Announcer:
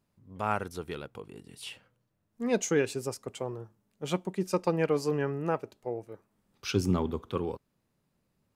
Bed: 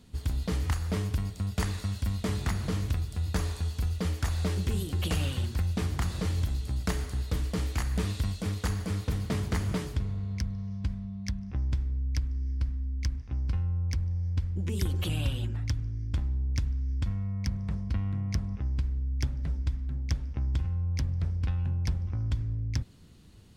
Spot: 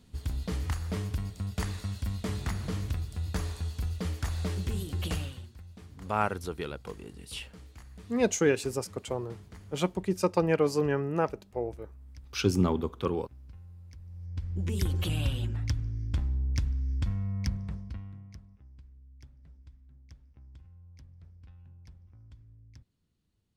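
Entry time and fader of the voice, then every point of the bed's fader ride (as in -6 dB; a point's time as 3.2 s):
5.70 s, +2.0 dB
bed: 5.14 s -3 dB
5.55 s -19.5 dB
13.95 s -19.5 dB
14.6 s 0 dB
17.49 s 0 dB
18.56 s -23 dB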